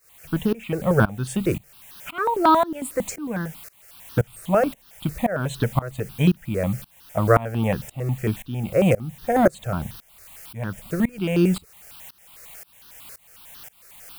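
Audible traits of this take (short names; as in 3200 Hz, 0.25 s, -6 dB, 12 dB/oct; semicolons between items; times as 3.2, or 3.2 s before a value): a quantiser's noise floor 8-bit, dither triangular; tremolo saw up 1.9 Hz, depth 95%; notches that jump at a steady rate 11 Hz 880–2200 Hz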